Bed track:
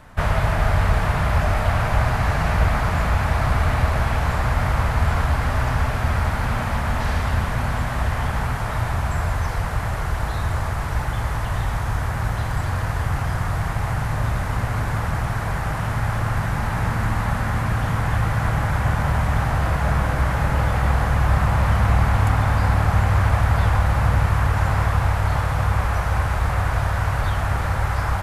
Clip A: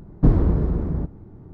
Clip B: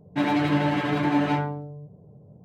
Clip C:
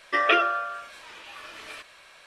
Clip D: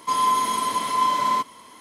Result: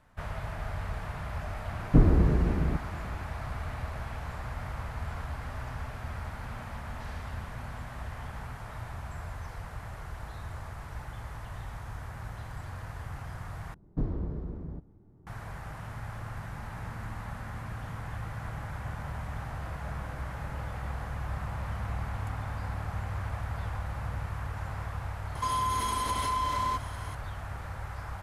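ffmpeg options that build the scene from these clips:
-filter_complex "[1:a]asplit=2[s0][s1];[0:a]volume=0.141[s2];[4:a]acompressor=threshold=0.0447:ratio=6:attack=3.2:release=140:knee=1:detection=peak[s3];[s2]asplit=2[s4][s5];[s4]atrim=end=13.744[s6];[s1]atrim=end=1.53,asetpts=PTS-STARTPTS,volume=0.178[s7];[s5]atrim=start=15.266[s8];[s0]atrim=end=1.53,asetpts=PTS-STARTPTS,volume=0.668,afade=t=in:d=0.004:c=hsin,afade=t=out:st=1.526:d=0.004:c=hsin,adelay=1710[s9];[s3]atrim=end=1.8,asetpts=PTS-STARTPTS,volume=0.944,afade=t=in:d=0.004:c=hsin,afade=t=out:st=1.796:d=0.004:c=hsin,adelay=25350[s10];[s6][s7]acrossfade=d=0.004:c1=hsin:c2=hsin[s11];[s11][s8]acrossfade=d=0.004:c1=hsin:c2=hsin[s12];[s12][s9][s10]amix=inputs=3:normalize=0"

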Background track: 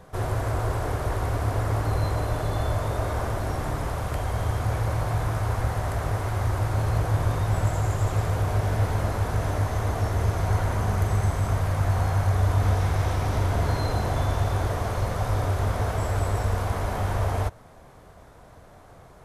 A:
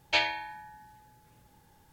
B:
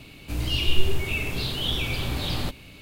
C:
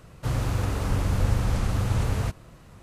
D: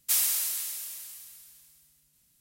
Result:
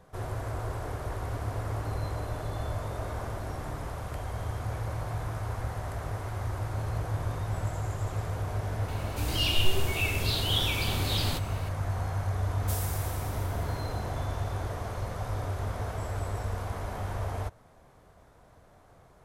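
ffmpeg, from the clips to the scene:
-filter_complex "[0:a]volume=0.398[s0];[3:a]acompressor=threshold=0.0398:ratio=6:attack=3.2:release=140:knee=1:detection=peak[s1];[2:a]bass=f=250:g=-4,treble=f=4000:g=6[s2];[s1]atrim=end=2.82,asetpts=PTS-STARTPTS,volume=0.158,afade=t=in:d=0.004:c=hsin,afade=t=out:st=2.816:d=0.004:c=hsin,adelay=1070[s3];[s2]atrim=end=2.81,asetpts=PTS-STARTPTS,volume=0.75,afade=t=in:d=0.004:c=hsin,afade=t=out:st=2.806:d=0.004:c=hsin,adelay=8880[s4];[4:a]atrim=end=2.4,asetpts=PTS-STARTPTS,volume=0.211,afade=t=in:d=0.004:c=hsin,afade=t=out:st=2.396:d=0.004:c=hsin,adelay=12590[s5];[s0][s3][s4][s5]amix=inputs=4:normalize=0"

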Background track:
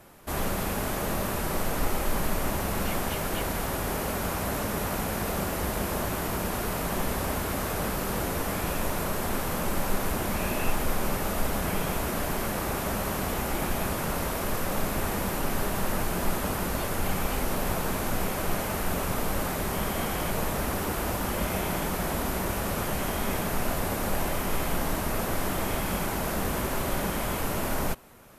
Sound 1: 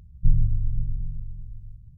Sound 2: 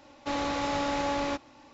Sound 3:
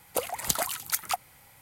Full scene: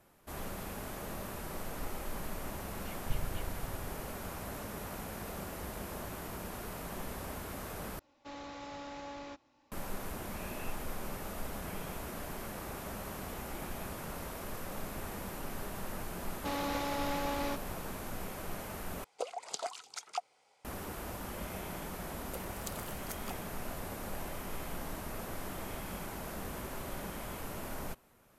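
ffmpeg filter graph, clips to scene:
-filter_complex "[2:a]asplit=2[s0][s1];[3:a]asplit=2[s2][s3];[0:a]volume=0.237[s4];[1:a]aeval=exprs='max(val(0),0)':c=same[s5];[s1]alimiter=limit=0.0631:level=0:latency=1:release=71[s6];[s2]highpass=370,equalizer=f=430:t=q:w=4:g=10,equalizer=f=700:t=q:w=4:g=7,equalizer=f=1800:t=q:w=4:g=-8,equalizer=f=5100:t=q:w=4:g=3,lowpass=f=7400:w=0.5412,lowpass=f=7400:w=1.3066[s7];[s4]asplit=3[s8][s9][s10];[s8]atrim=end=7.994[s11];[s0]atrim=end=1.73,asetpts=PTS-STARTPTS,volume=0.168[s12];[s9]atrim=start=9.716:end=19.044[s13];[s7]atrim=end=1.61,asetpts=PTS-STARTPTS,volume=0.282[s14];[s10]atrim=start=20.646[s15];[s5]atrim=end=1.97,asetpts=PTS-STARTPTS,volume=0.2,afade=t=in:d=0.004:c=hsin,afade=t=out:st=1.966:d=0.004:c=hsin,adelay=2830[s16];[s6]atrim=end=1.73,asetpts=PTS-STARTPTS,volume=0.708,afade=t=in:d=0.004:c=hsin,afade=t=out:st=1.726:d=0.004:c=hsin,adelay=16190[s17];[s3]atrim=end=1.61,asetpts=PTS-STARTPTS,volume=0.133,afade=t=in:d=0.004:c=hsin,afade=t=out:st=1.606:d=0.004:c=hsin,adelay=22170[s18];[s11][s12]acrossfade=d=0.004:c1=hsin:c2=hsin[s19];[s19][s13]acrossfade=d=0.004:c1=hsin:c2=hsin[s20];[s20][s14]acrossfade=d=0.004:c1=hsin:c2=hsin[s21];[s21][s15]acrossfade=d=0.004:c1=hsin:c2=hsin[s22];[s22][s16][s17][s18]amix=inputs=4:normalize=0"

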